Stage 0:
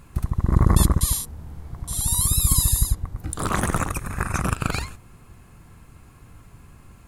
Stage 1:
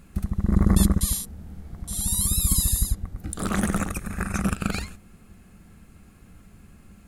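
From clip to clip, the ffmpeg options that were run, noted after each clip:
-af "equalizer=f=125:t=o:w=0.33:g=-10,equalizer=f=200:t=o:w=0.33:g=11,equalizer=f=1k:t=o:w=0.33:g=-10,volume=-2.5dB"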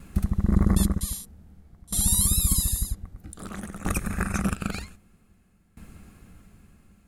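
-af "aeval=exprs='val(0)*pow(10,-20*if(lt(mod(0.52*n/s,1),2*abs(0.52)/1000),1-mod(0.52*n/s,1)/(2*abs(0.52)/1000),(mod(0.52*n/s,1)-2*abs(0.52)/1000)/(1-2*abs(0.52)/1000))/20)':c=same,volume=5dB"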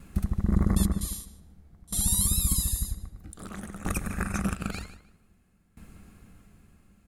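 -filter_complex "[0:a]asplit=2[a][b];[b]adelay=152,lowpass=f=4.9k:p=1,volume=-13.5dB,asplit=2[c][d];[d]adelay=152,lowpass=f=4.9k:p=1,volume=0.26,asplit=2[e][f];[f]adelay=152,lowpass=f=4.9k:p=1,volume=0.26[g];[a][c][e][g]amix=inputs=4:normalize=0,volume=-3dB"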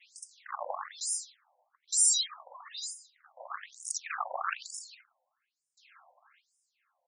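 -af "agate=range=-9dB:threshold=-51dB:ratio=16:detection=peak,afftfilt=real='re*between(b*sr/1024,710*pow(7100/710,0.5+0.5*sin(2*PI*1.1*pts/sr))/1.41,710*pow(7100/710,0.5+0.5*sin(2*PI*1.1*pts/sr))*1.41)':imag='im*between(b*sr/1024,710*pow(7100/710,0.5+0.5*sin(2*PI*1.1*pts/sr))/1.41,710*pow(7100/710,0.5+0.5*sin(2*PI*1.1*pts/sr))*1.41)':win_size=1024:overlap=0.75,volume=8.5dB"

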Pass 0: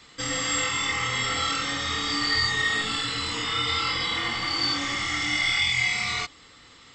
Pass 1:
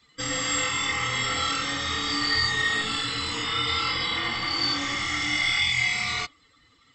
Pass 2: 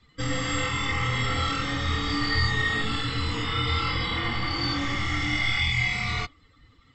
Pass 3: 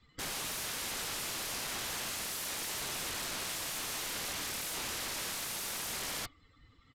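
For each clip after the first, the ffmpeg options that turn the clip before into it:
-af "afftdn=nr=14:nf=-45"
-af "aemphasis=mode=reproduction:type=bsi"
-af "aeval=exprs='(mod(23.7*val(0)+1,2)-1)/23.7':c=same,aresample=32000,aresample=44100,volume=-5.5dB"

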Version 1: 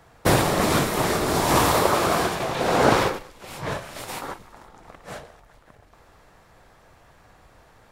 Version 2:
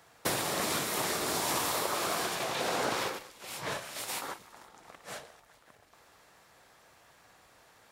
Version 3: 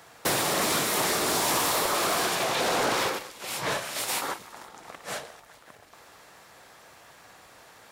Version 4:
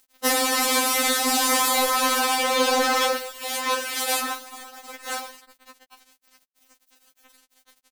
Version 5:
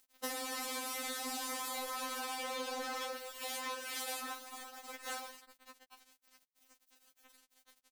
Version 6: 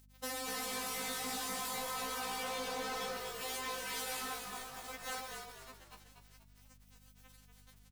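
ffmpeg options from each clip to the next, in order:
-af "highpass=f=210:p=1,highshelf=f=2.1k:g=9,acompressor=threshold=-21dB:ratio=5,volume=-7.5dB"
-af "lowshelf=f=90:g=-5.5,asoftclip=type=tanh:threshold=-28dB,volume=8.5dB"
-af "acrusher=bits=6:mix=0:aa=0.000001,afftfilt=real='re*3.46*eq(mod(b,12),0)':imag='im*3.46*eq(mod(b,12),0)':win_size=2048:overlap=0.75,volume=7dB"
-af "acompressor=threshold=-30dB:ratio=6,volume=-8dB"
-filter_complex "[0:a]asoftclip=type=hard:threshold=-37.5dB,aeval=exprs='val(0)+0.000708*(sin(2*PI*50*n/s)+sin(2*PI*2*50*n/s)/2+sin(2*PI*3*50*n/s)/3+sin(2*PI*4*50*n/s)/4+sin(2*PI*5*50*n/s)/5)':c=same,asplit=2[a][b];[b]asplit=4[c][d][e][f];[c]adelay=241,afreqshift=-57,volume=-6dB[g];[d]adelay=482,afreqshift=-114,volume=-14.6dB[h];[e]adelay=723,afreqshift=-171,volume=-23.3dB[i];[f]adelay=964,afreqshift=-228,volume=-31.9dB[j];[g][h][i][j]amix=inputs=4:normalize=0[k];[a][k]amix=inputs=2:normalize=0,volume=1dB"

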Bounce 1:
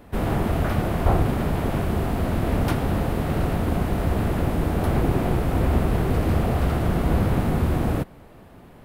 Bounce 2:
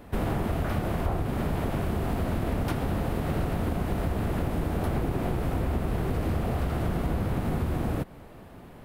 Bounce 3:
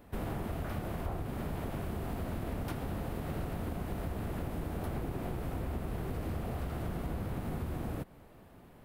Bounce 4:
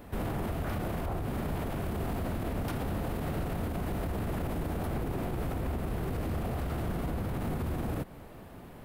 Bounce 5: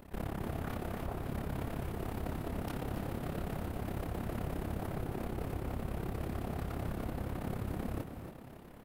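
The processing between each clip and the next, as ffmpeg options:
-af "acompressor=threshold=-24dB:ratio=6"
-af "highshelf=f=11k:g=6,volume=-9dB"
-af "alimiter=level_in=9.5dB:limit=-24dB:level=0:latency=1:release=29,volume=-9.5dB,volume=8dB"
-filter_complex "[0:a]tremolo=f=34:d=0.947,asplit=5[a][b][c][d][e];[b]adelay=278,afreqshift=36,volume=-8.5dB[f];[c]adelay=556,afreqshift=72,volume=-17.1dB[g];[d]adelay=834,afreqshift=108,volume=-25.8dB[h];[e]adelay=1112,afreqshift=144,volume=-34.4dB[i];[a][f][g][h][i]amix=inputs=5:normalize=0,volume=-1.5dB"

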